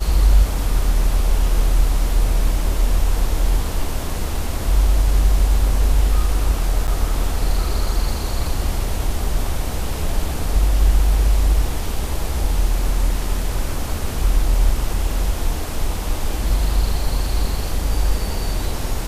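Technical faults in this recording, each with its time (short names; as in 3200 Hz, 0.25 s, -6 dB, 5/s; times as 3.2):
6.87–6.88 gap 9.1 ms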